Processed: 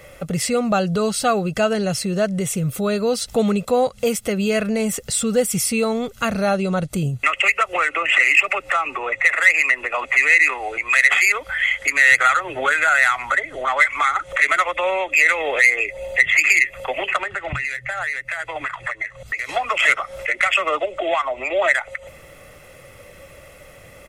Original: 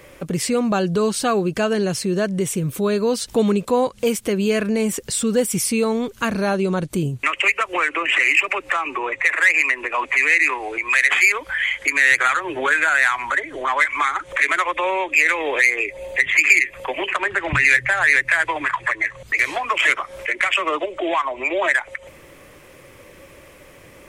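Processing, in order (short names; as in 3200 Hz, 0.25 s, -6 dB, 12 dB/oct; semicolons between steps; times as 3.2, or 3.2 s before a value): comb 1.5 ms, depth 56%; 17.17–19.49 compressor 6:1, threshold -23 dBFS, peak gain reduction 13.5 dB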